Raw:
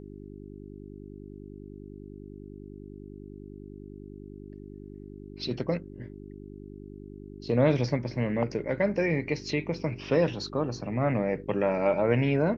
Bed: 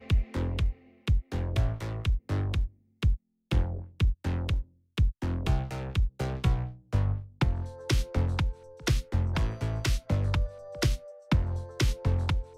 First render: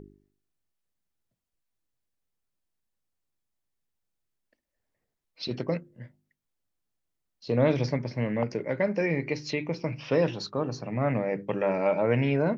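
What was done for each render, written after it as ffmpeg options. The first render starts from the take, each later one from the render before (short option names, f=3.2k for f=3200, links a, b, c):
-af "bandreject=f=50:t=h:w=4,bandreject=f=100:t=h:w=4,bandreject=f=150:t=h:w=4,bandreject=f=200:t=h:w=4,bandreject=f=250:t=h:w=4,bandreject=f=300:t=h:w=4,bandreject=f=350:t=h:w=4,bandreject=f=400:t=h:w=4"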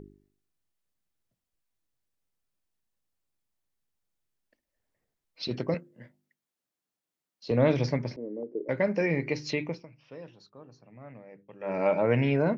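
-filter_complex "[0:a]asettb=1/sr,asplit=3[a][b][c];[a]atrim=end=5.744[d];[b]atrim=start=5.74:end=7.51,asetpts=PTS-STARTPTS,afade=t=in:d=0.004:c=qsin,afade=t=out:st=1.766:d=0.004:c=qsin,highpass=190[e];[c]atrim=start=7.506[f];[d][e]acrossfade=d=0.004:c1=hsin:c2=qsin[g];[g][f]acrossfade=d=0.004:c1=qsin:c2=hsin,asettb=1/sr,asplit=3[h][i][j];[h]atrim=end=8.164[k];[i]atrim=start=8.16:end=8.69,asetpts=PTS-STARTPTS,afade=t=in:d=0.004:c=qsin,afade=t=out:st=0.526:d=0.004:c=qsin,asuperpass=centerf=360:order=4:qfactor=2[l];[j]atrim=start=8.686[m];[k][l]acrossfade=d=0.004:c1=hsin:c2=qsin[n];[n][m]acrossfade=d=0.004:c1=qsin:c2=hsin,asplit=3[o][p][q];[o]atrim=end=9.86,asetpts=PTS-STARTPTS,afade=t=out:st=9.63:d=0.23:silence=0.0944061[r];[p]atrim=start=9.86:end=11.59,asetpts=PTS-STARTPTS,volume=-20.5dB[s];[q]atrim=start=11.59,asetpts=PTS-STARTPTS,afade=t=in:d=0.23:silence=0.0944061[t];[r][s][t]concat=n=3:v=0:a=1"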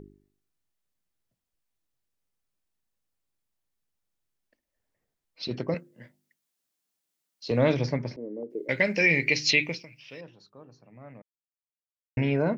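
-filter_complex "[0:a]asettb=1/sr,asplit=3[a][b][c];[a]atrim=end=5.764[d];[b]atrim=start=5.76:end=7.75,asetpts=PTS-STARTPTS,afade=t=in:d=0.004:c=qsin,afade=t=out:st=1.986:d=0.004:c=qsin,highshelf=f=2.6k:g=8.5[e];[c]atrim=start=7.746[f];[d][e]acrossfade=d=0.004:c1=hsin:c2=qsin[g];[g][f]acrossfade=d=0.004:c1=qsin:c2=hsin,asettb=1/sr,asplit=3[h][i][j];[h]atrim=end=8.504[k];[i]atrim=start=8.5:end=10.21,asetpts=PTS-STARTPTS,afade=t=in:d=0.004:c=qsin,afade=t=out:st=1.706:d=0.004:c=qsin,highshelf=f=1.7k:t=q:w=1.5:g=12.5[l];[j]atrim=start=10.206[m];[k][l]acrossfade=d=0.004:c1=hsin:c2=qsin[n];[n][m]acrossfade=d=0.004:c1=qsin:c2=hsin,asplit=3[o][p][q];[o]atrim=end=11.22,asetpts=PTS-STARTPTS,afade=t=out:st=11.216:d=0.004:c=hsin[r];[p]atrim=start=11.22:end=12.17,asetpts=PTS-STARTPTS,volume=0[s];[q]atrim=start=12.17,asetpts=PTS-STARTPTS,afade=t=in:d=0.004:c=hsin[t];[r][s][t]concat=n=3:v=0:a=1"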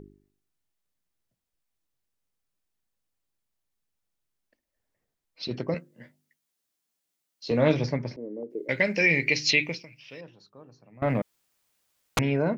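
-filter_complex "[0:a]asettb=1/sr,asplit=3[a][b][c];[a]atrim=end=5.754[d];[b]atrim=start=5.75:end=7.84,asetpts=PTS-STARTPTS,afade=t=in:d=0.004:c=qsin,afade=t=out:st=2.086:d=0.004:c=qsin,asplit=2[e][f];[f]adelay=13,volume=-8dB[g];[e][g]amix=inputs=2:normalize=0,atrim=end_sample=92169[h];[c]atrim=start=7.836[i];[d][h]acrossfade=d=0.004:c1=hsin:c2=qsin[j];[j][i]acrossfade=d=0.004:c1=qsin:c2=hsin,asettb=1/sr,asplit=3[k][l][m];[k]atrim=end=11.024[n];[l]atrim=start=11.02:end=12.19,asetpts=PTS-STARTPTS,afade=t=in:d=0.004:c=qsin,afade=t=out:st=1.166:d=0.004:c=qsin,aeval=exprs='0.126*sin(PI/2*8.91*val(0)/0.126)':c=same[o];[m]atrim=start=12.186[p];[n][o]acrossfade=d=0.004:c1=hsin:c2=qsin[q];[q][p]acrossfade=d=0.004:c1=qsin:c2=hsin"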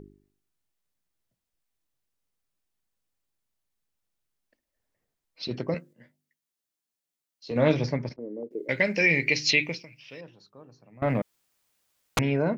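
-filter_complex "[0:a]asettb=1/sr,asplit=3[a][b][c];[a]atrim=end=8.094[d];[b]atrim=start=8.09:end=8.51,asetpts=PTS-STARTPTS,afade=t=in:d=0.004:c=qsin,afade=t=out:st=0.416:d=0.004:c=qsin,agate=range=-17dB:threshold=-42dB:ratio=16:release=100:detection=peak[e];[c]atrim=start=8.506[f];[d][e]acrossfade=d=0.004:c1=hsin:c2=qsin[g];[g][f]acrossfade=d=0.004:c1=qsin:c2=hsin,asplit=3[h][i][j];[h]atrim=end=5.932[k];[i]atrim=start=5.928:end=7.562,asetpts=PTS-STARTPTS,volume=-6.5dB[l];[j]atrim=start=7.558[m];[k][l]acrossfade=d=0.004:c1=hsin:c2=hsin[n];[n][m]acrossfade=d=0.004:c1=hsin:c2=hsin"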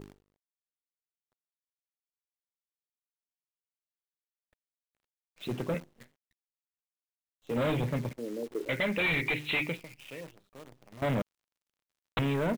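-af "aresample=8000,asoftclip=type=hard:threshold=-26dB,aresample=44100,acrusher=bits=9:dc=4:mix=0:aa=0.000001"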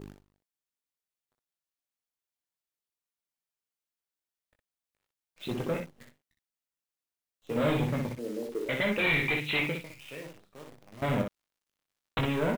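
-af "aecho=1:1:20|61:0.501|0.562"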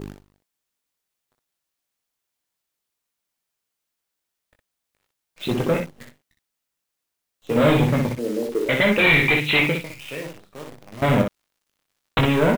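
-af "volume=10.5dB"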